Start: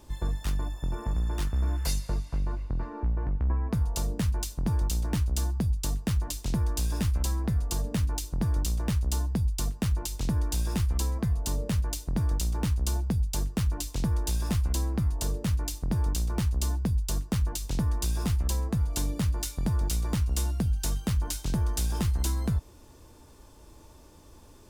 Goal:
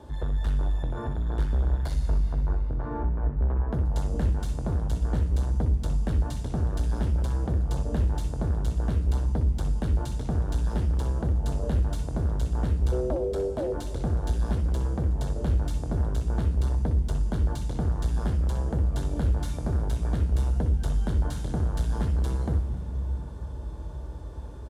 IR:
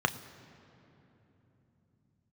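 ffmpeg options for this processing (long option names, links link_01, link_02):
-filter_complex "[0:a]asoftclip=type=tanh:threshold=-32.5dB,asplit=3[link_01][link_02][link_03];[link_01]afade=type=out:start_time=12.91:duration=0.02[link_04];[link_02]aeval=exprs='val(0)*sin(2*PI*440*n/s)':channel_layout=same,afade=type=in:start_time=12.91:duration=0.02,afade=type=out:start_time=13.72:duration=0.02[link_05];[link_03]afade=type=in:start_time=13.72:duration=0.02[link_06];[link_04][link_05][link_06]amix=inputs=3:normalize=0,asplit=5[link_07][link_08][link_09][link_10][link_11];[link_08]adelay=265,afreqshift=52,volume=-21dB[link_12];[link_09]adelay=530,afreqshift=104,volume=-26.8dB[link_13];[link_10]adelay=795,afreqshift=156,volume=-32.7dB[link_14];[link_11]adelay=1060,afreqshift=208,volume=-38.5dB[link_15];[link_07][link_12][link_13][link_14][link_15]amix=inputs=5:normalize=0[link_16];[1:a]atrim=start_sample=2205,asetrate=22932,aresample=44100[link_17];[link_16][link_17]afir=irnorm=-1:irlink=0,volume=-8dB"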